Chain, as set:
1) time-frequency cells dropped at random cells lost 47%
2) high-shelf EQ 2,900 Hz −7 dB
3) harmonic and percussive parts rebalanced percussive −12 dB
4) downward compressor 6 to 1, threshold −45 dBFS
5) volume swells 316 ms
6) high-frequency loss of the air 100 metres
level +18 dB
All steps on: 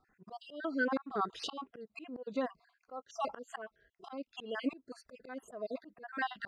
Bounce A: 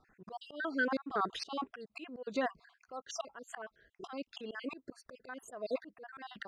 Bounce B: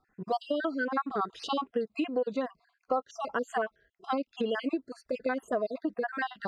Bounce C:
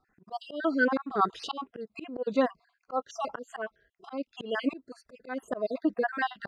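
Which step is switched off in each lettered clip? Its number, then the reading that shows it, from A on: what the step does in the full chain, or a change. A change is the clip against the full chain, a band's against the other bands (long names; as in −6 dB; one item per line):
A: 3, 8 kHz band +5.5 dB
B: 5, change in crest factor −4.5 dB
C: 4, change in momentary loudness spread −2 LU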